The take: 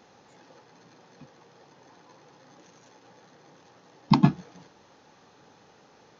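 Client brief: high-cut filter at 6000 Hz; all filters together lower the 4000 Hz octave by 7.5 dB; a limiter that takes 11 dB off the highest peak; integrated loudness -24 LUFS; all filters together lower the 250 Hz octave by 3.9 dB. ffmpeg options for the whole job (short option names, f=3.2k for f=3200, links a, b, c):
-af "lowpass=6k,equalizer=f=250:t=o:g=-5.5,equalizer=f=4k:t=o:g=-8,volume=8.5dB,alimiter=limit=-8.5dB:level=0:latency=1"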